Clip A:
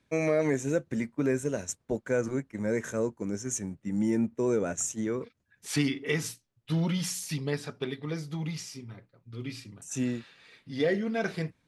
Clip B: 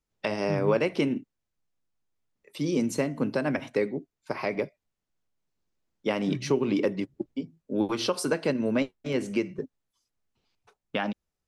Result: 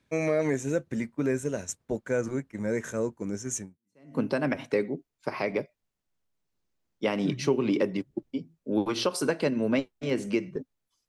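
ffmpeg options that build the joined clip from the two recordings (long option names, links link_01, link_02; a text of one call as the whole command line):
ffmpeg -i cue0.wav -i cue1.wav -filter_complex "[0:a]apad=whole_dur=11.08,atrim=end=11.08,atrim=end=4.17,asetpts=PTS-STARTPTS[link_01];[1:a]atrim=start=2.64:end=10.11,asetpts=PTS-STARTPTS[link_02];[link_01][link_02]acrossfade=duration=0.56:curve1=exp:curve2=exp" out.wav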